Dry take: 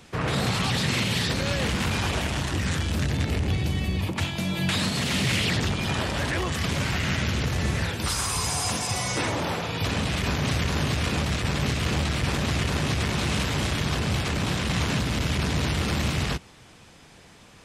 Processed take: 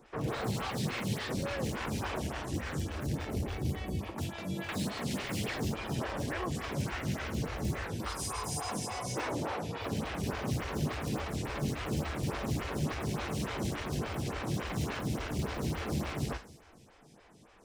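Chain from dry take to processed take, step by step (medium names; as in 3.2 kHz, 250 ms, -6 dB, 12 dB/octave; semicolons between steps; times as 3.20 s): in parallel at -6 dB: integer overflow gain 18 dB; on the sum: treble shelf 2.3 kHz -9 dB; feedback comb 440 Hz, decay 0.35 s, harmonics odd, mix 50%; on a send at -9 dB: high-order bell 7.9 kHz +12 dB + reverberation, pre-delay 3 ms; on the sum: lamp-driven phase shifter 3.5 Hz; trim -1.5 dB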